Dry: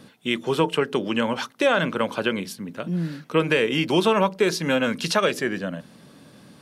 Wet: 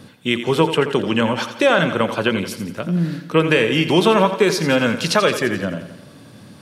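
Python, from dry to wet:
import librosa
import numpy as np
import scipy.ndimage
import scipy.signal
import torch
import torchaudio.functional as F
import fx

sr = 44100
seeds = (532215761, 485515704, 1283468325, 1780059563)

p1 = fx.peak_eq(x, sr, hz=100.0, db=9.0, octaves=0.66)
p2 = p1 + fx.echo_feedback(p1, sr, ms=86, feedback_pct=56, wet_db=-11.0, dry=0)
y = p2 * librosa.db_to_amplitude(4.5)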